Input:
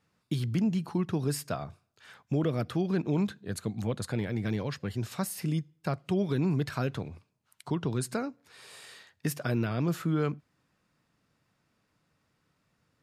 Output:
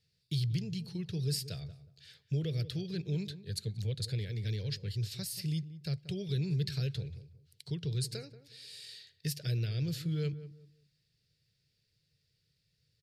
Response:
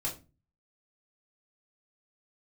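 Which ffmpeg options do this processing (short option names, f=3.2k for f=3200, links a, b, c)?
-filter_complex "[0:a]firequalizer=gain_entry='entry(140,0);entry(240,-21);entry(440,-7);entry(680,-22);entry(1100,-29);entry(1700,-10);entry(4500,8);entry(6400,-3)':delay=0.05:min_phase=1,asplit=2[a][b];[b]adelay=183,lowpass=f=1.1k:p=1,volume=-13dB,asplit=2[c][d];[d]adelay=183,lowpass=f=1.1k:p=1,volume=0.28,asplit=2[e][f];[f]adelay=183,lowpass=f=1.1k:p=1,volume=0.28[g];[c][e][g]amix=inputs=3:normalize=0[h];[a][h]amix=inputs=2:normalize=0"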